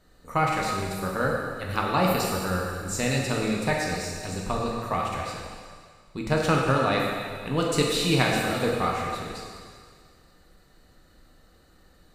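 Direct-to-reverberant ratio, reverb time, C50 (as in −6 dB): −2.5 dB, 1.9 s, 0.5 dB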